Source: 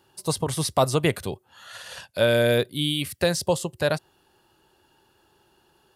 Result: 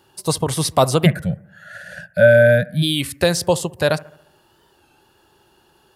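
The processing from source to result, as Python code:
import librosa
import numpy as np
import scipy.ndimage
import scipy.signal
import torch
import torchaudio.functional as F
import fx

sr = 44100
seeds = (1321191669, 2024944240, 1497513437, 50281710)

p1 = fx.curve_eq(x, sr, hz=(100.0, 180.0, 390.0, 590.0, 1100.0, 1500.0, 3000.0, 13000.0), db=(0, 13, -29, 6, -28, 7, -15, -10), at=(1.06, 2.82), fade=0.02)
p2 = p1 + fx.echo_bbd(p1, sr, ms=70, stages=1024, feedback_pct=53, wet_db=-21, dry=0)
p3 = fx.record_warp(p2, sr, rpm=33.33, depth_cents=100.0)
y = p3 * 10.0 ** (5.5 / 20.0)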